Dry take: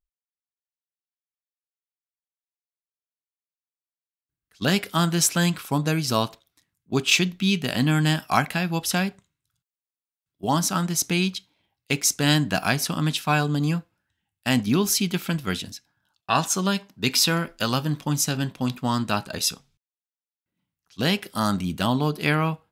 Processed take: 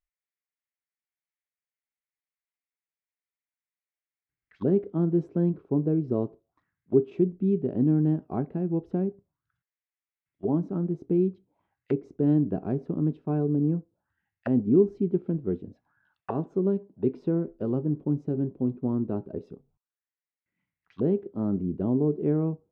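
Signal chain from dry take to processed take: touch-sensitive low-pass 390–2100 Hz down, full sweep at -28 dBFS; trim -5 dB

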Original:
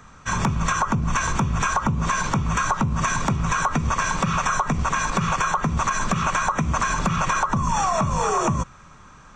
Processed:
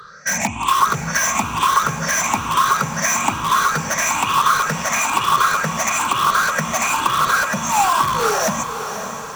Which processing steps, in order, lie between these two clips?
drifting ripple filter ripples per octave 0.61, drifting +1.1 Hz, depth 23 dB; high-pass 610 Hz 6 dB/octave; in parallel at -7 dB: integer overflow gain 17 dB; on the sum: echo that smears into a reverb 566 ms, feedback 52%, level -9 dB

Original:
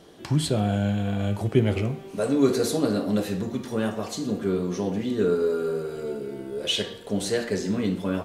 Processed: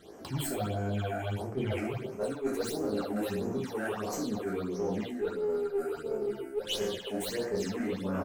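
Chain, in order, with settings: tracing distortion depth 0.038 ms; peaking EQ 5.8 kHz -5 dB 2.9 oct; speakerphone echo 360 ms, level -14 dB; reverberation RT60 0.65 s, pre-delay 3 ms, DRR -1.5 dB; phase shifter stages 8, 1.5 Hz, lowest notch 130–3700 Hz; bass shelf 360 Hz -9 dB; in parallel at -6 dB: one-sided clip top -30.5 dBFS; on the sum: de-hum 141.7 Hz, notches 2; reverse; compression 6:1, threshold -27 dBFS, peak gain reduction 12.5 dB; reverse; attacks held to a fixed rise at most 280 dB/s; trim -2 dB

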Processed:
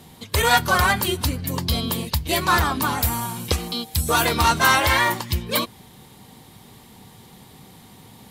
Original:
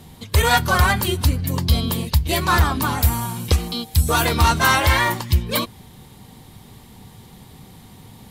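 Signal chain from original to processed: bass shelf 110 Hz -11.5 dB

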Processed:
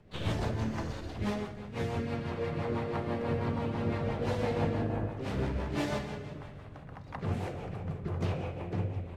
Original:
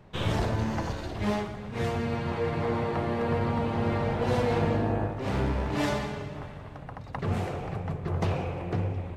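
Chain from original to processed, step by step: harmony voices +3 st -10 dB; rotary cabinet horn 6 Hz; de-hum 61.29 Hz, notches 33; trim -3 dB

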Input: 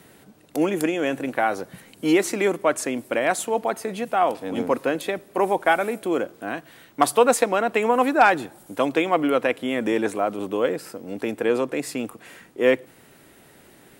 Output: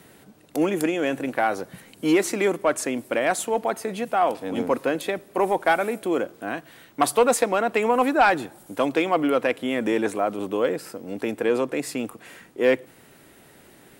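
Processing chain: saturation -8 dBFS, distortion -21 dB

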